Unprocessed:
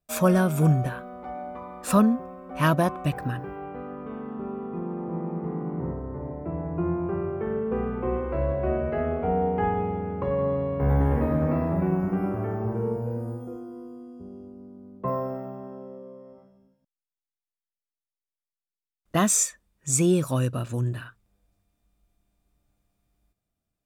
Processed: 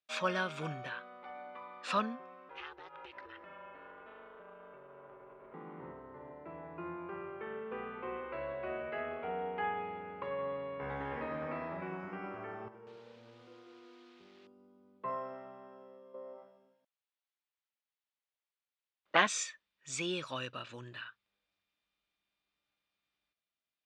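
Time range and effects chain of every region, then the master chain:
0:02.49–0:05.54: low-pass filter 6,600 Hz + downward compressor 10 to 1, threshold −32 dBFS + ring modulation 210 Hz
0:12.68–0:14.47: downward compressor 3 to 1, threshold −38 dBFS + feedback echo at a low word length 189 ms, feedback 35%, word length 9 bits, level −5.5 dB
0:16.14–0:19.27: parametric band 590 Hz +13.5 dB 2.8 octaves + saturating transformer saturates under 1,100 Hz
whole clip: low-pass filter 3,600 Hz 24 dB per octave; first difference; notch filter 710 Hz, Q 12; level +10 dB

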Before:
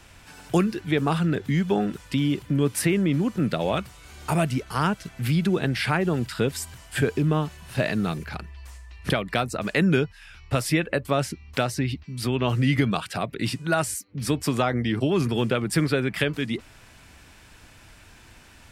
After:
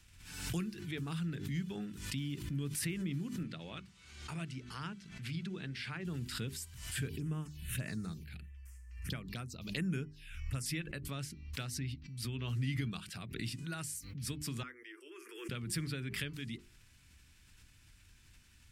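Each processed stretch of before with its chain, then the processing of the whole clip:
0:03.43–0:06.05: high-pass filter 180 Hz 6 dB per octave + high-frequency loss of the air 72 metres + mains-hum notches 60/120/180/240/300 Hz
0:07.07–0:10.66: high-shelf EQ 4,400 Hz +4.5 dB + phaser swept by the level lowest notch 540 Hz, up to 4,100 Hz, full sweep at −19 dBFS
0:14.63–0:15.49: Chebyshev high-pass with heavy ripple 330 Hz, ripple 3 dB + phaser with its sweep stopped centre 1,700 Hz, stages 4
whole clip: guitar amp tone stack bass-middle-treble 6-0-2; mains-hum notches 50/100/150/200/250/300/350/400 Hz; background raised ahead of every attack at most 60 dB per second; level +3 dB

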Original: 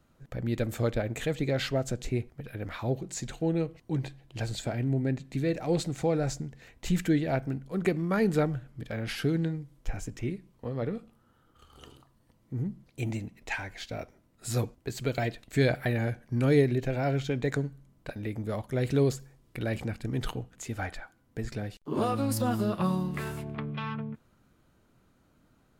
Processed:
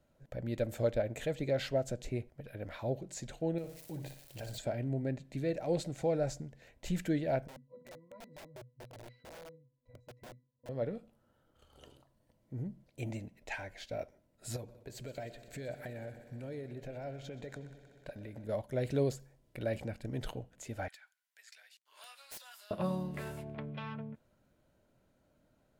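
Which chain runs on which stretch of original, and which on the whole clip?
0:03.58–0:04.58: spike at every zero crossing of −35 dBFS + downward compressor 2 to 1, threshold −36 dBFS + flutter between parallel walls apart 10.3 metres, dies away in 0.47 s
0:07.47–0:10.69: resonances in every octave B, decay 0.25 s + wrap-around overflow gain 40 dB
0:14.56–0:18.49: downward compressor 4 to 1, threshold −36 dBFS + echo machine with several playback heads 62 ms, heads second and third, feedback 75%, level −17 dB
0:20.88–0:22.71: Bessel high-pass filter 2,100 Hz, order 4 + wrap-around overflow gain 33 dB
whole clip: parametric band 590 Hz +10.5 dB 0.39 octaves; notch filter 1,200 Hz, Q 7.3; level −7.5 dB

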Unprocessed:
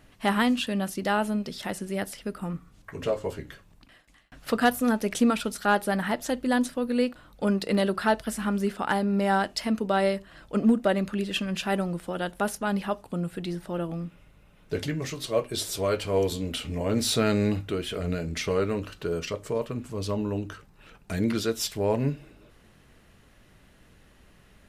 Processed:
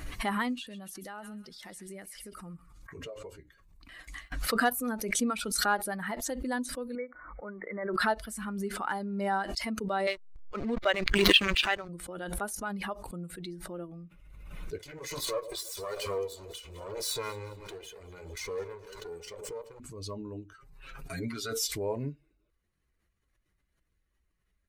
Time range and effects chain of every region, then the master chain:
0:00.55–0:03.33: delay with a high-pass on its return 133 ms, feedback 37%, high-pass 1,600 Hz, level −8.5 dB + downward compressor, threshold −27 dBFS
0:06.95–0:07.94: linear-phase brick-wall low-pass 2,300 Hz + low-shelf EQ 370 Hz −11 dB
0:10.07–0:11.89: band-pass filter 330–4,800 Hz + parametric band 3,400 Hz +13.5 dB 2.6 octaves + slack as between gear wheels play −25 dBFS
0:14.78–0:19.80: lower of the sound and its delayed copy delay 2 ms + low-shelf EQ 230 Hz −7.5 dB + delay that swaps between a low-pass and a high-pass 105 ms, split 950 Hz, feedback 65%, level −11 dB
0:20.53–0:21.71: mains-hum notches 50/100/150/200/250/300/350/400/450/500 Hz + dynamic equaliser 1,200 Hz, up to +4 dB, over −50 dBFS, Q 2.9 + comb filter 7.4 ms, depth 84%
whole clip: spectral dynamics exaggerated over time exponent 1.5; low-shelf EQ 380 Hz −7.5 dB; background raised ahead of every attack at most 37 dB per second; level −2.5 dB

